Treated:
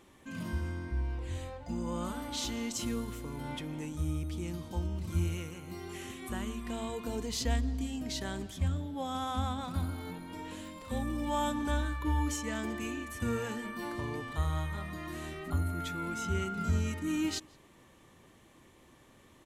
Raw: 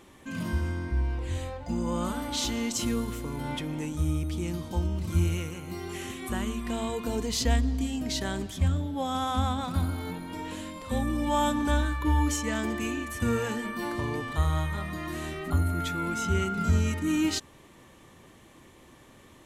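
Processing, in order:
0:10.60–0:11.42: surface crackle 75 per second −36 dBFS
slap from a distant wall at 29 metres, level −26 dB
level −6 dB

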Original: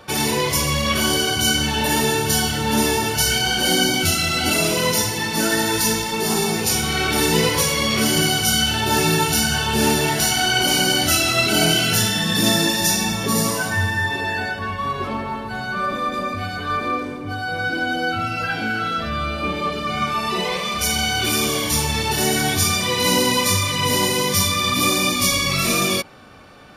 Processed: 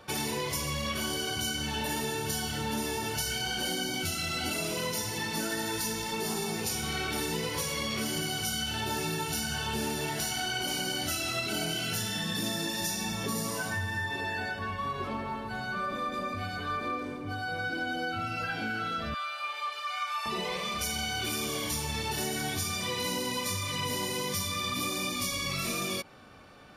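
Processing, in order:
0:19.14–0:20.26: high-pass filter 840 Hz 24 dB per octave
downward compressor, threshold −21 dBFS, peak gain reduction 8 dB
level −8 dB

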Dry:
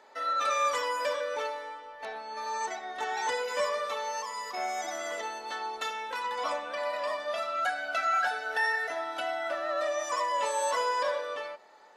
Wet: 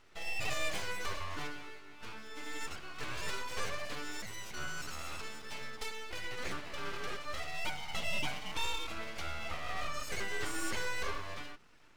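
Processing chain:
full-wave rectification
parametric band 1,700 Hz −3 dB 0.25 octaves
level −4 dB

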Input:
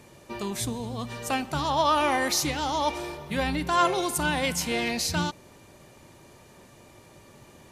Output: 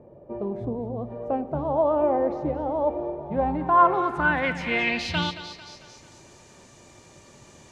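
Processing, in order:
echo with a time of its own for lows and highs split 470 Hz, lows 113 ms, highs 223 ms, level −13 dB
low-pass filter sweep 580 Hz → 6,900 Hz, 0:03.12–0:06.10

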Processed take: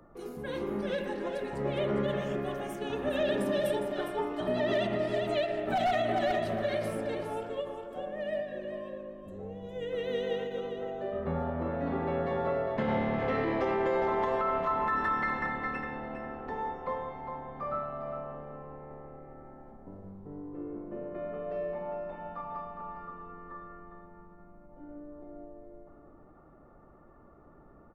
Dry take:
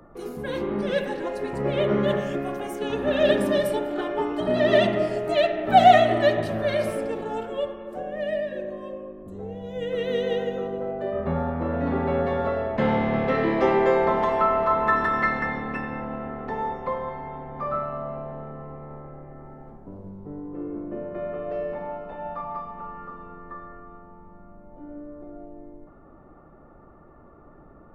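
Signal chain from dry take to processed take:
wavefolder on the positive side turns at −8.5 dBFS
repeating echo 407 ms, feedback 16%, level −8 dB
brickwall limiter −14 dBFS, peak gain reduction 10 dB
every ending faded ahead of time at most 120 dB per second
level −6.5 dB

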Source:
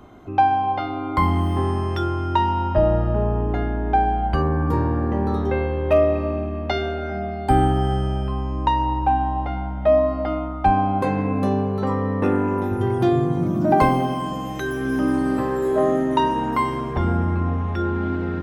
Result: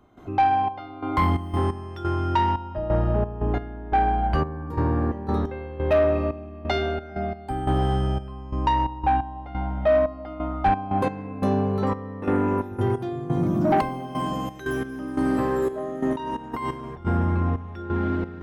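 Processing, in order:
0:16.13–0:17.07: compressor whose output falls as the input rises −27 dBFS, ratio −1
gate pattern ".xxx..xx.x." 88 BPM −12 dB
soft clipping −13 dBFS, distortion −17 dB

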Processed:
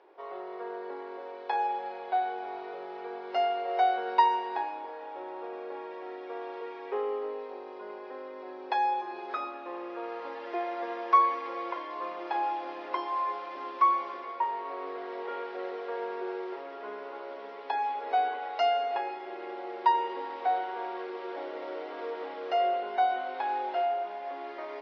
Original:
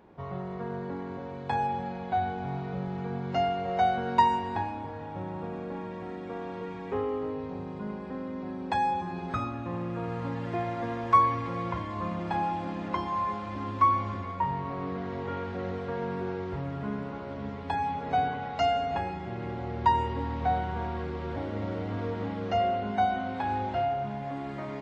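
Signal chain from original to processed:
Chebyshev band-pass filter 360–5,400 Hz, order 4

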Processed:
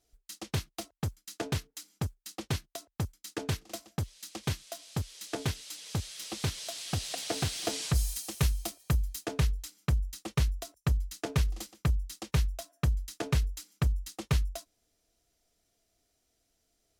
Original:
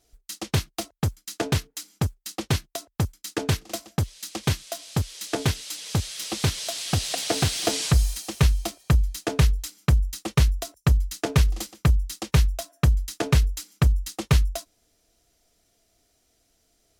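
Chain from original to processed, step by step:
0:07.94–0:09.24: high-shelf EQ 6,600 Hz → 9,700 Hz +10.5 dB
level −8.5 dB

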